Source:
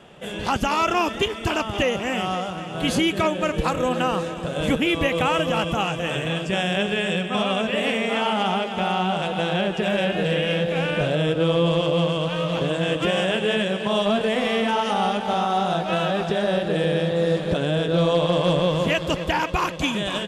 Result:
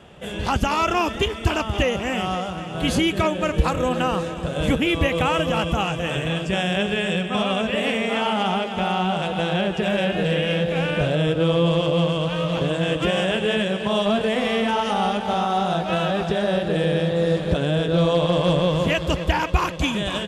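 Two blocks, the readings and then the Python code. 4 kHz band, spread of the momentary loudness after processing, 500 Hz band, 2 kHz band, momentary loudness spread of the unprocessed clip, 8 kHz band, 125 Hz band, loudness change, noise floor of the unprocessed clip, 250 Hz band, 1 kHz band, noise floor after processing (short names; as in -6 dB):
0.0 dB, 4 LU, 0.0 dB, 0.0 dB, 4 LU, 0.0 dB, +2.5 dB, +0.5 dB, -31 dBFS, +1.0 dB, 0.0 dB, -30 dBFS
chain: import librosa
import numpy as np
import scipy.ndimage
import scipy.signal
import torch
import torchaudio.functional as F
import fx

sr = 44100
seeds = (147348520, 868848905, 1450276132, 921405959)

y = fx.peak_eq(x, sr, hz=64.0, db=11.5, octaves=1.3)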